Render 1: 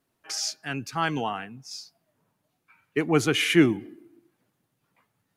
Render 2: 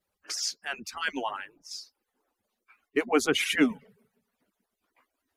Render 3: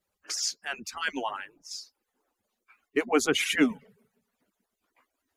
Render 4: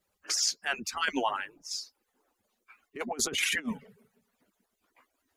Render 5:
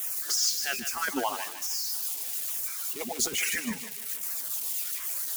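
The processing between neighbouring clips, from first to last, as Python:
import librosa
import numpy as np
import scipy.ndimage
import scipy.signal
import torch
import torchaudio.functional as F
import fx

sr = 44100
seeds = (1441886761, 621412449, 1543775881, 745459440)

y1 = fx.hpss_only(x, sr, part='percussive')
y2 = fx.peak_eq(y1, sr, hz=6900.0, db=4.0, octaves=0.28)
y3 = fx.over_compress(y2, sr, threshold_db=-29.0, ratio=-0.5)
y4 = y3 + 0.5 * 10.0 ** (-26.0 / 20.0) * np.diff(np.sign(y3), prepend=np.sign(y3[:1]))
y4 = fx.filter_lfo_notch(y4, sr, shape='saw_down', hz=1.2, low_hz=750.0, high_hz=4600.0, q=1.6)
y4 = fx.echo_thinned(y4, sr, ms=152, feedback_pct=44, hz=640.0, wet_db=-9.0)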